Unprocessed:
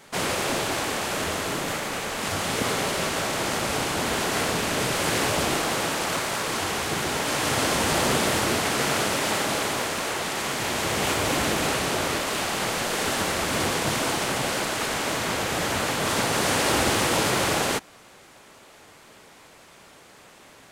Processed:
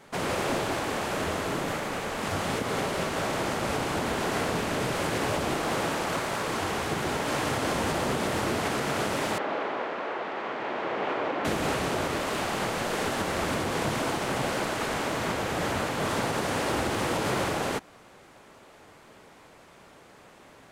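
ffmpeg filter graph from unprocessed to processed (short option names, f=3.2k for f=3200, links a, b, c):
-filter_complex "[0:a]asettb=1/sr,asplit=3[a][b][c];[a]atrim=end=9.384[d];[b]atrim=start=9.38:end=11.45,asetpts=PTS-STARTPTS,afade=t=in:d=0.004:c=qsin,afade=t=out:st=2.066:d=0.004:c=qsin,highpass=340,lowpass=3.4k,aemphasis=mode=reproduction:type=75kf[e];[c]atrim=start=11.446[f];[d][e]acrossfade=d=0.004:c1=hsin:c2=qsin[g];[g][f]acrossfade=d=0.004:c1=qsin:c2=hsin,highshelf=f=2.3k:g=-9,alimiter=limit=-18dB:level=0:latency=1:release=170"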